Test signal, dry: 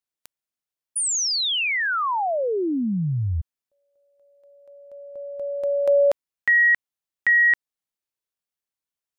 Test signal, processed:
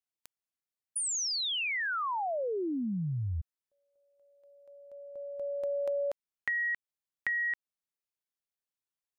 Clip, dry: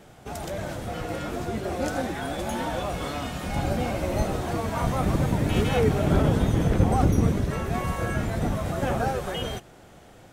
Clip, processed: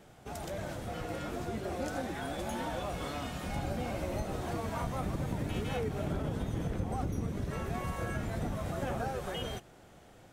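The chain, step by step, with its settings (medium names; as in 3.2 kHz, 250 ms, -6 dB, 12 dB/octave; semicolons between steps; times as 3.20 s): compression 6:1, threshold -24 dBFS; trim -6.5 dB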